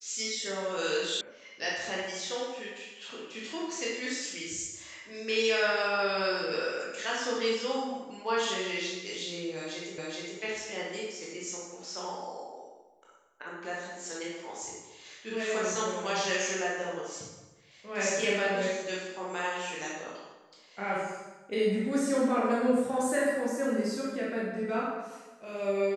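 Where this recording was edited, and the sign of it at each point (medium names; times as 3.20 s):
1.21 s: sound stops dead
9.98 s: repeat of the last 0.42 s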